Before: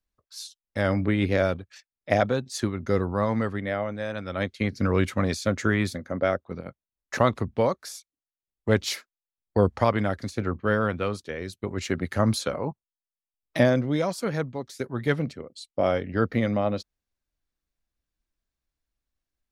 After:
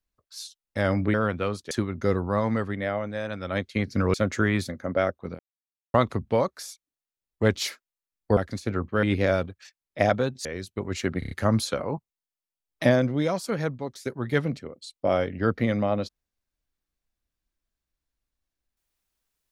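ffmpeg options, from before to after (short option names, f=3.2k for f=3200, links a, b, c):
-filter_complex "[0:a]asplit=13[a][b][c][d][e][f][g][h][i][j][k][l][m];[a]atrim=end=1.142[n];[b]atrim=start=10.738:end=11.312[o];[c]atrim=start=2.558:end=4.992[p];[d]atrim=start=5.398:end=6.65,asetpts=PTS-STARTPTS,afade=t=out:st=1.248:d=0.004:c=hsin[q];[e]atrim=start=6.65:end=7.2,asetpts=PTS-STARTPTS,volume=0[r];[f]atrim=start=7.2:end=9.632,asetpts=PTS-STARTPTS,afade=t=in:d=0.004:c=hsin[s];[g]atrim=start=10.078:end=10.742[t];[h]atrim=start=1.138:end=2.562[u];[i]atrim=start=11.308:end=12.082[v];[j]atrim=start=12.048:end=12.082[w];[k]atrim=start=12.048:end=12.082[x];[l]atrim=start=12.048:end=12.082[y];[m]atrim=start=12.048[z];[n][o]acrossfade=d=0.004:c1=hsin:c2=hsin[aa];[aa][p]acrossfade=d=0.004:c1=hsin:c2=hsin[ab];[q][r][s]concat=n=3:v=0:a=1[ac];[ab][ac]acrossfade=d=0.004:c1=hsin:c2=hsin[ad];[ad][t]acrossfade=d=0.004:c1=hsin:c2=hsin[ae];[ae][u]acrossfade=d=0.004:c1=hsin:c2=hsin[af];[af][v]acrossfade=d=0.004:c1=hsin:c2=hsin[ag];[ag][w]acrossfade=d=0.004:c1=hsin:c2=hsin[ah];[ah][x]acrossfade=d=0.004:c1=hsin:c2=hsin[ai];[ai][y]acrossfade=d=0.004:c1=hsin:c2=hsin[aj];[aj][z]acrossfade=d=0.004:c1=hsin:c2=hsin"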